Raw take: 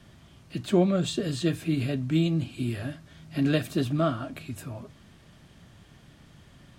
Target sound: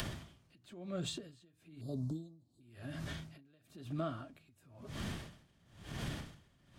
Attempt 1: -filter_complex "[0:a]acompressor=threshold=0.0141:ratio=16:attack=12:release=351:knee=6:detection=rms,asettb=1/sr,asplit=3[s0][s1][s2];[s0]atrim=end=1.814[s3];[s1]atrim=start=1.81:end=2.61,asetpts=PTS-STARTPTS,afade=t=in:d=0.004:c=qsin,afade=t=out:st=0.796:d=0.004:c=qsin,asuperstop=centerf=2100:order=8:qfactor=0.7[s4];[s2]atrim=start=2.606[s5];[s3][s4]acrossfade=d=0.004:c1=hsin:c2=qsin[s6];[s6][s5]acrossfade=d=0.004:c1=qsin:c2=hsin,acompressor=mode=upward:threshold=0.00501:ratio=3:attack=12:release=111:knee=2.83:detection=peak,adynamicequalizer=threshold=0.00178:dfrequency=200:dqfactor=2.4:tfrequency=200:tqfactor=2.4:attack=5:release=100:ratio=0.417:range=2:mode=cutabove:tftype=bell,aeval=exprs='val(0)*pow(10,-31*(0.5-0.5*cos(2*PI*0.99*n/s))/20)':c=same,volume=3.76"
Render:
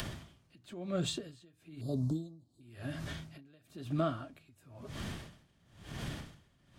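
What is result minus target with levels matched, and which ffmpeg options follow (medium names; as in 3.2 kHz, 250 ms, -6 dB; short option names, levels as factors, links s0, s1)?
compression: peak gain reduction -6.5 dB
-filter_complex "[0:a]acompressor=threshold=0.00631:ratio=16:attack=12:release=351:knee=6:detection=rms,asettb=1/sr,asplit=3[s0][s1][s2];[s0]atrim=end=1.814[s3];[s1]atrim=start=1.81:end=2.61,asetpts=PTS-STARTPTS,afade=t=in:d=0.004:c=qsin,afade=t=out:st=0.796:d=0.004:c=qsin,asuperstop=centerf=2100:order=8:qfactor=0.7[s4];[s2]atrim=start=2.606[s5];[s3][s4]acrossfade=d=0.004:c1=hsin:c2=qsin[s6];[s6][s5]acrossfade=d=0.004:c1=qsin:c2=hsin,acompressor=mode=upward:threshold=0.00501:ratio=3:attack=12:release=111:knee=2.83:detection=peak,adynamicequalizer=threshold=0.00178:dfrequency=200:dqfactor=2.4:tfrequency=200:tqfactor=2.4:attack=5:release=100:ratio=0.417:range=2:mode=cutabove:tftype=bell,aeval=exprs='val(0)*pow(10,-31*(0.5-0.5*cos(2*PI*0.99*n/s))/20)':c=same,volume=3.76"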